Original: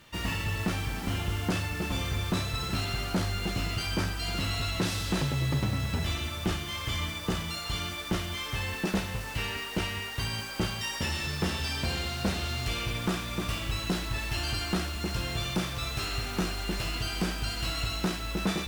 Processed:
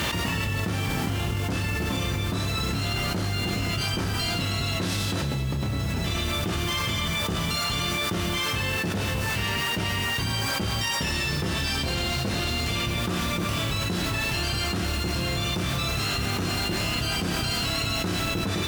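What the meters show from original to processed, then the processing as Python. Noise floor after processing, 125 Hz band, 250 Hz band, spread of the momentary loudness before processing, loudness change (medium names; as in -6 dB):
-28 dBFS, +4.5 dB, +3.5 dB, 3 LU, +5.0 dB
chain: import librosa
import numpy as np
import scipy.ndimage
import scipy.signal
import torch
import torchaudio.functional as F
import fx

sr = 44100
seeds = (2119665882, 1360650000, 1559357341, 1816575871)

y = fx.octave_divider(x, sr, octaves=1, level_db=0.0)
y = scipy.signal.sosfilt(scipy.signal.butter(2, 80.0, 'highpass', fs=sr, output='sos'), y)
y = fx.doubler(y, sr, ms=29.0, db=-5.0)
y = fx.env_flatten(y, sr, amount_pct=100)
y = y * librosa.db_to_amplitude(-6.0)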